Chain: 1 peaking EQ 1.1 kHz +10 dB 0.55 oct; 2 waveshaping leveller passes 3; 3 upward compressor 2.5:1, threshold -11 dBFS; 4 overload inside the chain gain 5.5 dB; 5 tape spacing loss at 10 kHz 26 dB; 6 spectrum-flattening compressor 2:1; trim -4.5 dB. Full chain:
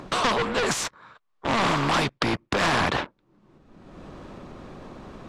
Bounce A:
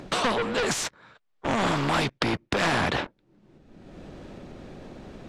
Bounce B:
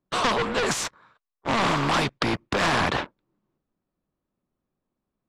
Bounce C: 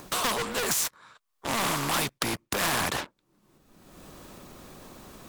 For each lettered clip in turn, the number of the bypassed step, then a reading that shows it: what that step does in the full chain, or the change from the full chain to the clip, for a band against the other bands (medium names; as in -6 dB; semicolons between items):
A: 1, 1 kHz band -2.0 dB; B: 3, momentary loudness spread change -12 LU; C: 5, 8 kHz band +10.5 dB